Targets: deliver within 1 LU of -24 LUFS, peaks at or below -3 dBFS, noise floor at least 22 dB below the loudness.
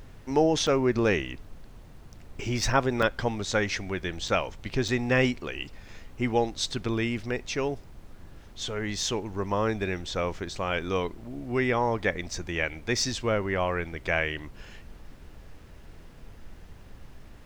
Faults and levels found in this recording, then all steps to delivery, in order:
dropouts 4; longest dropout 4.4 ms; noise floor -49 dBFS; noise floor target -50 dBFS; loudness -28.0 LUFS; peak level -8.5 dBFS; loudness target -24.0 LUFS
-> interpolate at 0.67/3.02/4.28/4.88 s, 4.4 ms; noise print and reduce 6 dB; trim +4 dB

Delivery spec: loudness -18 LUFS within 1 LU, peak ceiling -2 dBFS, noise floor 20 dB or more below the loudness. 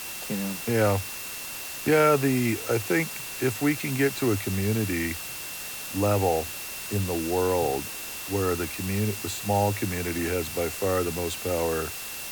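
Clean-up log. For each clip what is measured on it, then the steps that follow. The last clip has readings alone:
steady tone 2.7 kHz; tone level -42 dBFS; noise floor -36 dBFS; noise floor target -47 dBFS; loudness -26.5 LUFS; peak level -9.0 dBFS; loudness target -18.0 LUFS
-> band-stop 2.7 kHz, Q 30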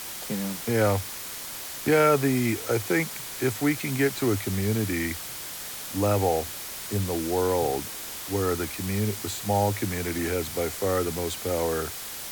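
steady tone not found; noise floor -37 dBFS; noise floor target -47 dBFS
-> noise print and reduce 10 dB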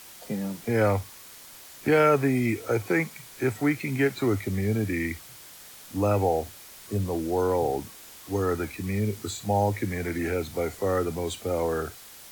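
noise floor -47 dBFS; loudness -27.0 LUFS; peak level -9.0 dBFS; loudness target -18.0 LUFS
-> trim +9 dB; peak limiter -2 dBFS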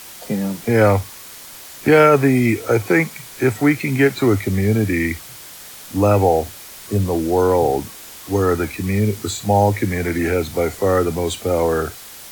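loudness -18.0 LUFS; peak level -2.0 dBFS; noise floor -38 dBFS

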